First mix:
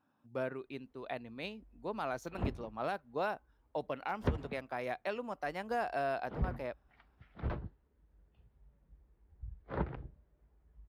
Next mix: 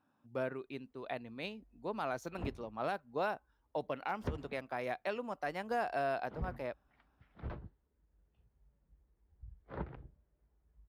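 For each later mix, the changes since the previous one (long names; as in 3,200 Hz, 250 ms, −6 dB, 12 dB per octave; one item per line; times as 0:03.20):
background −6.0 dB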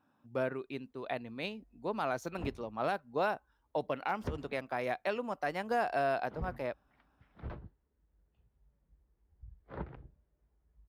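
speech +3.5 dB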